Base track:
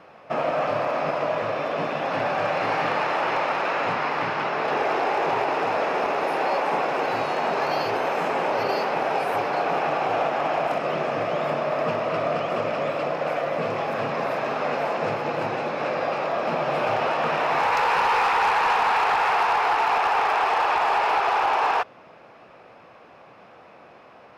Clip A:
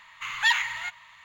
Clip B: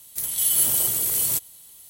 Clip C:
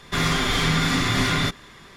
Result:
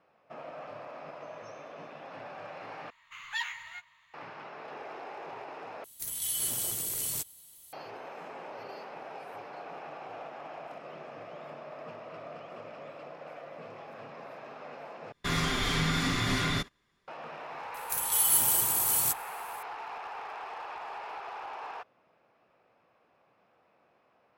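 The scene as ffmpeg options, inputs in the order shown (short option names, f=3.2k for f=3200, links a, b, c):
-filter_complex "[1:a]asplit=2[a][b];[2:a]asplit=2[c][d];[0:a]volume=-19.5dB[e];[a]asuperpass=centerf=5800:order=12:qfactor=5.5[f];[b]asplit=2[g][h];[h]adelay=14,volume=-7dB[i];[g][i]amix=inputs=2:normalize=0[j];[c]acrossover=split=9400[k][l];[l]acompressor=threshold=-27dB:ratio=4:attack=1:release=60[m];[k][m]amix=inputs=2:normalize=0[n];[3:a]agate=range=-20dB:threshold=-41dB:ratio=16:release=100:detection=peak[o];[e]asplit=4[p][q][r][s];[p]atrim=end=2.904[t];[j]atrim=end=1.24,asetpts=PTS-STARTPTS,volume=-13dB[u];[q]atrim=start=4.136:end=5.844[v];[n]atrim=end=1.89,asetpts=PTS-STARTPTS,volume=-7dB[w];[r]atrim=start=7.726:end=15.124[x];[o]atrim=end=1.96,asetpts=PTS-STARTPTS,volume=-7.5dB[y];[s]atrim=start=17.076[z];[f]atrim=end=1.24,asetpts=PTS-STARTPTS,volume=-16dB,afade=t=in:d=0.004:c=hsin,afade=t=out:st=1.236:d=0.004:c=hsin,adelay=1000[aa];[d]atrim=end=1.89,asetpts=PTS-STARTPTS,volume=-4.5dB,afade=t=in:d=0.004:c=hsin,afade=t=out:st=1.886:d=0.004:c=hsin,adelay=17740[ab];[t][u]acrossfade=d=0.004:c1=hsin:c2=hsin[ac];[ac][v]acrossfade=d=0.004:c1=hsin:c2=hsin[ad];[ad][w]acrossfade=d=0.004:c1=hsin:c2=hsin[ae];[ae][x]acrossfade=d=0.004:c1=hsin:c2=hsin[af];[af][y]acrossfade=d=0.004:c1=hsin:c2=hsin[ag];[ag][z]acrossfade=d=0.004:c1=hsin:c2=hsin[ah];[ah][aa][ab]amix=inputs=3:normalize=0"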